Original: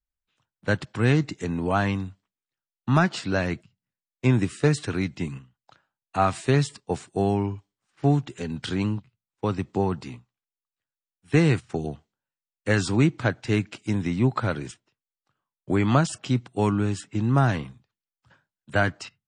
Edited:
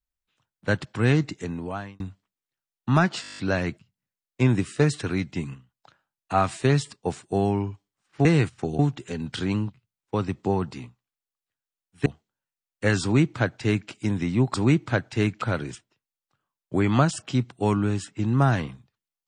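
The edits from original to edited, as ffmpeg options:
-filter_complex "[0:a]asplit=15[s0][s1][s2][s3][s4][s5][s6][s7][s8][s9][s10][s11][s12][s13][s14];[s0]atrim=end=2,asetpts=PTS-STARTPTS,afade=t=out:st=1.27:d=0.73[s15];[s1]atrim=start=2:end=3.242,asetpts=PTS-STARTPTS,afade=t=in:d=0.004:c=hsin[s16];[s2]atrim=start=3.218:end=3.242[s17];[s3]atrim=start=3.218:end=3.242[s18];[s4]atrim=start=3.218:end=3.242[s19];[s5]atrim=start=3.218:end=3.242[s20];[s6]atrim=start=3.218:end=3.242[s21];[s7]atrim=start=3.218:end=3.242[s22];[s8]atrim=start=3.218:end=3.242[s23];[s9]atrim=start=3.218:end=8.092[s24];[s10]atrim=start=11.358:end=11.902[s25];[s11]atrim=start=8.088:end=11.362[s26];[s12]atrim=start=11.898:end=14.382[s27];[s13]atrim=start=12.858:end=13.742[s28];[s14]atrim=start=14.378[s29];[s15][s16]concat=n=2:v=0:a=1[s30];[s30][s17]acrossfade=d=0.004:c1=hsin:c2=hsin[s31];[s31][s18]acrossfade=d=0.004:c1=hsin:c2=hsin[s32];[s32][s19]acrossfade=d=0.004:c1=hsin:c2=hsin[s33];[s33][s20]acrossfade=d=0.004:c1=hsin:c2=hsin[s34];[s34][s21]acrossfade=d=0.004:c1=hsin:c2=hsin[s35];[s35][s22]acrossfade=d=0.004:c1=hsin:c2=hsin[s36];[s36][s23]acrossfade=d=0.004:c1=hsin:c2=hsin[s37];[s37][s24]acrossfade=d=0.004:c1=hsin:c2=hsin[s38];[s38][s25]acrossfade=d=0.004:c1=hsin:c2=hsin[s39];[s39][s26]acrossfade=d=0.004:c1=hsin:c2=hsin[s40];[s40][s27]acrossfade=d=0.004:c1=hsin:c2=hsin[s41];[s41][s28]acrossfade=d=0.004:c1=hsin:c2=hsin[s42];[s42][s29]acrossfade=d=0.004:c1=hsin:c2=hsin"

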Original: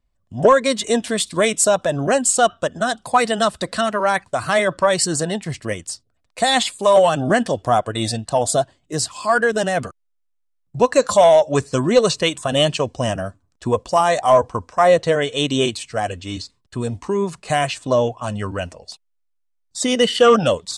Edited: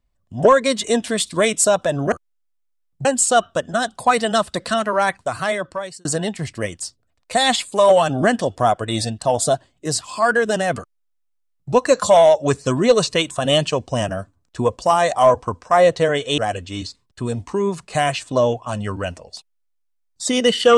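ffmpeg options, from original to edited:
-filter_complex "[0:a]asplit=5[s0][s1][s2][s3][s4];[s0]atrim=end=2.122[s5];[s1]atrim=start=9.858:end=10.792[s6];[s2]atrim=start=2.118:end=5.12,asetpts=PTS-STARTPTS,afade=t=out:st=2.102:d=0.9[s7];[s3]atrim=start=5.12:end=15.452,asetpts=PTS-STARTPTS,afade=t=in:d=0.004:c=hsin[s8];[s4]atrim=start=15.928[s9];[s5][s6]acrossfade=d=0.004:c1=hsin:c2=hsin[s10];[s7][s8]concat=n=2:v=0:a=1[s11];[s10][s11]acrossfade=d=0.004:c1=hsin:c2=hsin[s12];[s12][s9]acrossfade=d=0.004:c1=hsin:c2=hsin"

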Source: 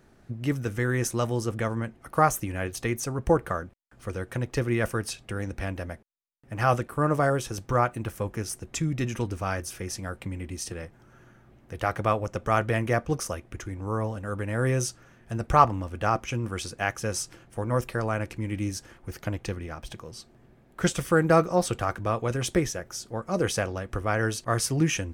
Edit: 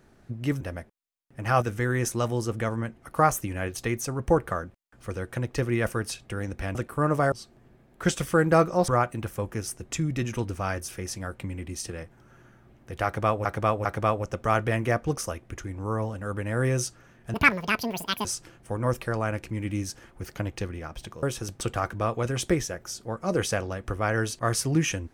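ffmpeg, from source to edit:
-filter_complex "[0:a]asplit=12[s0][s1][s2][s3][s4][s5][s6][s7][s8][s9][s10][s11];[s0]atrim=end=0.612[s12];[s1]atrim=start=5.738:end=6.752[s13];[s2]atrim=start=0.608:end=5.742[s14];[s3]atrim=start=6.748:end=7.322[s15];[s4]atrim=start=20.098:end=21.662[s16];[s5]atrim=start=7.698:end=12.272[s17];[s6]atrim=start=11.868:end=12.272[s18];[s7]atrim=start=11.868:end=15.364[s19];[s8]atrim=start=15.36:end=17.12,asetpts=PTS-STARTPTS,asetrate=85554,aresample=44100,atrim=end_sample=40008,asetpts=PTS-STARTPTS[s20];[s9]atrim=start=17.116:end=20.102[s21];[s10]atrim=start=7.318:end=7.702[s22];[s11]atrim=start=21.658[s23];[s12][s13]acrossfade=d=0.004:c1=hsin:c2=hsin[s24];[s24][s14]acrossfade=d=0.004:c1=hsin:c2=hsin[s25];[s25][s15]acrossfade=d=0.004:c1=hsin:c2=hsin[s26];[s26][s16]acrossfade=d=0.004:c1=hsin:c2=hsin[s27];[s27][s17]acrossfade=d=0.004:c1=hsin:c2=hsin[s28];[s28][s18]acrossfade=d=0.004:c1=hsin:c2=hsin[s29];[s29][s19]acrossfade=d=0.004:c1=hsin:c2=hsin[s30];[s30][s20]acrossfade=d=0.004:c1=hsin:c2=hsin[s31];[s31][s21]acrossfade=d=0.004:c1=hsin:c2=hsin[s32];[s32][s22]acrossfade=d=0.004:c1=hsin:c2=hsin[s33];[s33][s23]acrossfade=d=0.004:c1=hsin:c2=hsin"

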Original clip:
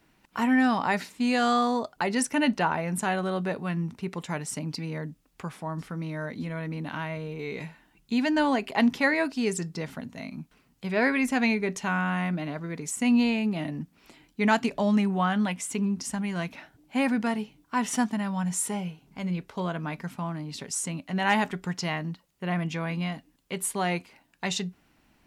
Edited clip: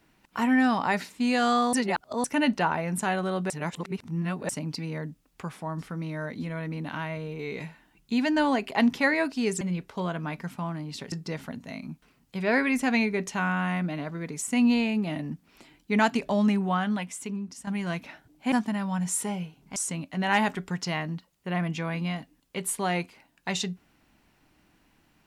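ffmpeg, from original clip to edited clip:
-filter_complex "[0:a]asplit=10[s0][s1][s2][s3][s4][s5][s6][s7][s8][s9];[s0]atrim=end=1.732[s10];[s1]atrim=start=1.728:end=2.242,asetpts=PTS-STARTPTS,areverse[s11];[s2]atrim=start=2.238:end=3.502[s12];[s3]atrim=start=3.498:end=4.492,asetpts=PTS-STARTPTS,areverse[s13];[s4]atrim=start=4.488:end=9.612[s14];[s5]atrim=start=19.208:end=20.722[s15];[s6]atrim=start=9.608:end=16.16,asetpts=PTS-STARTPTS,afade=t=out:st=5.442:d=1.11:silence=0.281838[s16];[s7]atrim=start=16.16:end=17.012,asetpts=PTS-STARTPTS,afade=t=in:d=0.004:c=hsin:silence=0.281838[s17];[s8]atrim=start=17.968:end=19.212[s18];[s9]atrim=start=20.718[s19];[s10][s11]acrossfade=d=0.004:c1=hsin:c2=hsin[s20];[s20][s12]acrossfade=d=0.004:c1=hsin:c2=hsin[s21];[s21][s13]acrossfade=d=0.004:c1=hsin:c2=hsin[s22];[s22][s14]acrossfade=d=0.004:c1=hsin:c2=hsin[s23];[s23][s15]acrossfade=d=0.004:c1=hsin:c2=hsin[s24];[s16][s17]concat=n=2:v=0:a=1[s25];[s24][s25]acrossfade=d=0.004:c1=hsin:c2=hsin[s26];[s26][s18]acrossfade=d=0.004:c1=hsin:c2=hsin[s27];[s27][s19]acrossfade=d=0.004:c1=hsin:c2=hsin"

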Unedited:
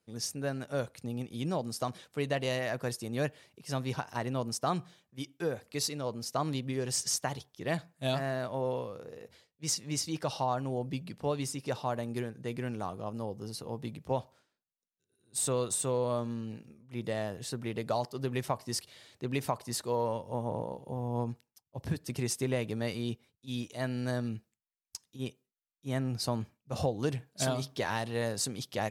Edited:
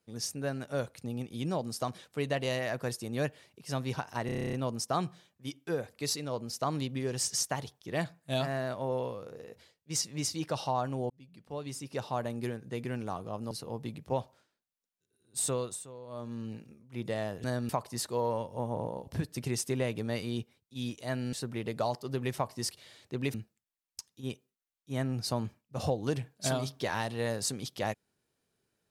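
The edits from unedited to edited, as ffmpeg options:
-filter_complex "[0:a]asplit=19[s0][s1][s2][s3][s4][s5][s6][s7][s8][s9][s10][s11][s12][s13][s14][s15][s16][s17][s18];[s0]atrim=end=4.292[s19];[s1]atrim=start=4.258:end=4.292[s20];[s2]atrim=start=4.258:end=4.292[s21];[s3]atrim=start=4.258:end=4.292[s22];[s4]atrim=start=4.258:end=4.292[s23];[s5]atrim=start=4.258:end=4.292[s24];[s6]atrim=start=4.258:end=4.292[s25];[s7]atrim=start=4.258:end=4.292[s26];[s8]atrim=start=4.258:end=4.292[s27];[s9]atrim=start=4.258:end=10.83,asetpts=PTS-STARTPTS,afade=t=out:st=6.568:d=0.004:c=hsin[s28];[s10]atrim=start=10.83:end=13.242,asetpts=PTS-STARTPTS,afade=t=in:d=1.09[s29];[s11]atrim=start=13.498:end=15.86,asetpts=PTS-STARTPTS,afade=t=out:st=1.962:d=0.4:silence=0.149624[s30];[s12]atrim=start=15.86:end=16.06,asetpts=PTS-STARTPTS,volume=0.15[s31];[s13]atrim=start=16.06:end=17.432,asetpts=PTS-STARTPTS,afade=t=in:d=0.4:silence=0.149624[s32];[s14]atrim=start=24.048:end=24.302[s33];[s15]atrim=start=19.438:end=20.822[s34];[s16]atrim=start=21.788:end=24.052[s35];[s17]atrim=start=17.428:end=19.442[s36];[s18]atrim=start=24.298[s37];[s19][s20]acrossfade=d=0.004:c1=hsin:c2=hsin[s38];[s38][s21]acrossfade=d=0.004:c1=hsin:c2=hsin[s39];[s39][s22]acrossfade=d=0.004:c1=hsin:c2=hsin[s40];[s40][s23]acrossfade=d=0.004:c1=hsin:c2=hsin[s41];[s41][s24]acrossfade=d=0.004:c1=hsin:c2=hsin[s42];[s42][s25]acrossfade=d=0.004:c1=hsin:c2=hsin[s43];[s43][s26]acrossfade=d=0.004:c1=hsin:c2=hsin[s44];[s44][s27]acrossfade=d=0.004:c1=hsin:c2=hsin[s45];[s28][s29]concat=n=2:v=0:a=1[s46];[s45][s46]acrossfade=d=0.004:c1=hsin:c2=hsin[s47];[s30][s31][s32]concat=n=3:v=0:a=1[s48];[s47][s48]acrossfade=d=0.004:c1=hsin:c2=hsin[s49];[s49][s33]acrossfade=d=0.004:c1=hsin:c2=hsin[s50];[s50][s34]acrossfade=d=0.004:c1=hsin:c2=hsin[s51];[s51][s35]acrossfade=d=0.004:c1=hsin:c2=hsin[s52];[s52][s36]acrossfade=d=0.004:c1=hsin:c2=hsin[s53];[s53][s37]acrossfade=d=0.004:c1=hsin:c2=hsin"

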